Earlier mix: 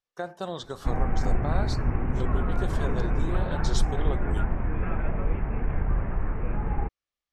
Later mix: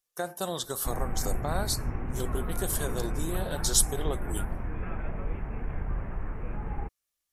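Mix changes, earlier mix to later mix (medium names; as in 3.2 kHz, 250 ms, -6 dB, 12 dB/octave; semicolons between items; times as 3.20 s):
background -6.5 dB; master: remove distance through air 170 m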